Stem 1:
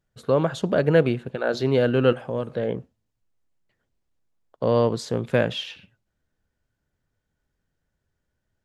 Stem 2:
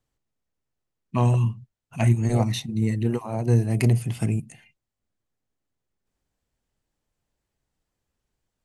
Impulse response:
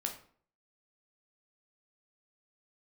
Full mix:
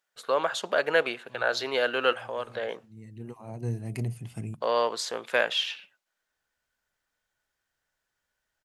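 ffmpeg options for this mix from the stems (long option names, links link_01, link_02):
-filter_complex "[0:a]highpass=880,acontrast=22,volume=-1dB,asplit=2[link_01][link_02];[1:a]adelay=150,volume=-12dB[link_03];[link_02]apad=whole_len=387657[link_04];[link_03][link_04]sidechaincompress=threshold=-51dB:ratio=5:attack=16:release=477[link_05];[link_01][link_05]amix=inputs=2:normalize=0"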